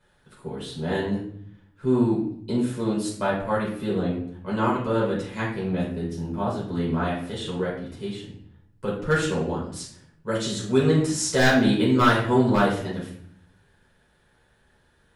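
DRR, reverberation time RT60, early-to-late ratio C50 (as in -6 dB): -7.0 dB, 0.60 s, 4.0 dB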